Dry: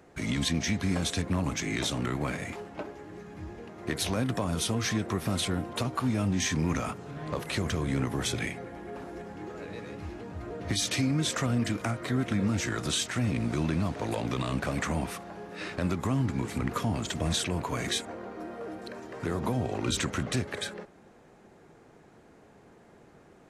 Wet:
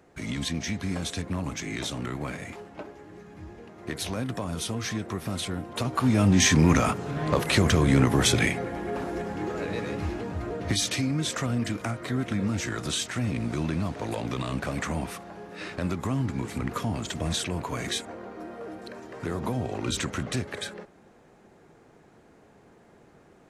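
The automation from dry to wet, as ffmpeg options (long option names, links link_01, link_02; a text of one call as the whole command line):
ffmpeg -i in.wav -af "volume=9dB,afade=type=in:start_time=5.68:duration=0.72:silence=0.281838,afade=type=out:start_time=10.02:duration=0.98:silence=0.354813" out.wav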